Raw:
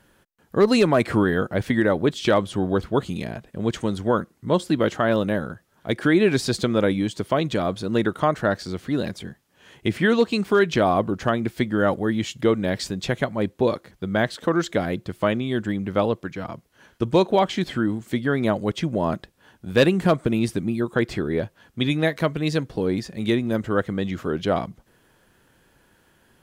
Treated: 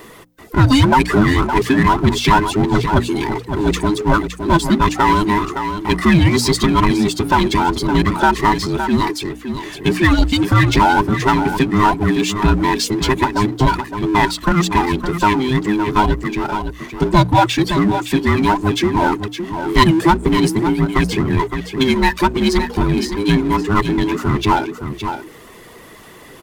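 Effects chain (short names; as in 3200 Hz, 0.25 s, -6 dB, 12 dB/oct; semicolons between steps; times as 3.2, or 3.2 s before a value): band inversion scrambler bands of 500 Hz; reverb removal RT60 0.54 s; notches 60/120/180/240/300 Hz; on a send: echo 0.564 s -12 dB; on the sum: power-law curve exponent 0.7; gain +4.5 dB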